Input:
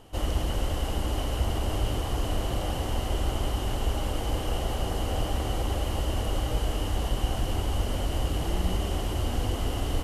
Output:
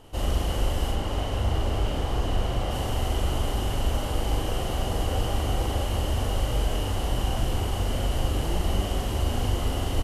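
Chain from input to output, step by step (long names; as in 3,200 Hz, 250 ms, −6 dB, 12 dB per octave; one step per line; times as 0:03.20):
0:00.91–0:02.71: high-shelf EQ 7,300 Hz −10 dB
double-tracking delay 41 ms −2 dB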